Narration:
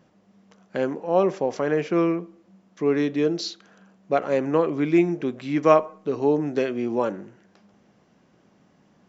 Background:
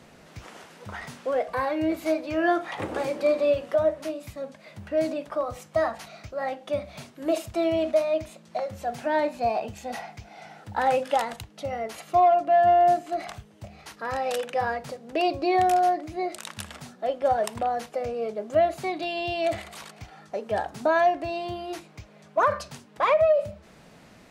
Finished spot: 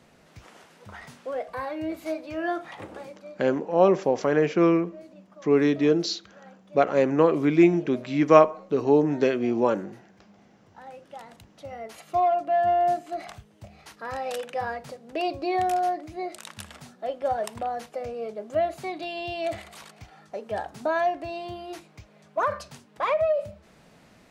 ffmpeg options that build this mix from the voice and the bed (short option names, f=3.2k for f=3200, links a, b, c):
-filter_complex "[0:a]adelay=2650,volume=1.5dB[a];[1:a]volume=12.5dB,afade=t=out:st=2.61:d=0.64:silence=0.158489,afade=t=in:st=11.1:d=1.09:silence=0.125893[b];[a][b]amix=inputs=2:normalize=0"